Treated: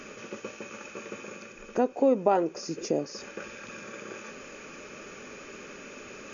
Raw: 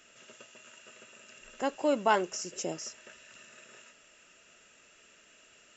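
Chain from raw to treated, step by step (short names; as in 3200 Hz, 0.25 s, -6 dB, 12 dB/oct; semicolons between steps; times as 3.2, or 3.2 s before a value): reverse; upward compressor, threshold -39 dBFS; reverse; dynamic EQ 680 Hz, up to +6 dB, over -41 dBFS, Q 1.1; varispeed -9%; small resonant body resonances 250/410 Hz, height 7 dB, ringing for 30 ms; compressor 2:1, threshold -36 dBFS, peak gain reduction 12 dB; high shelf 2000 Hz -9.5 dB; gain +8.5 dB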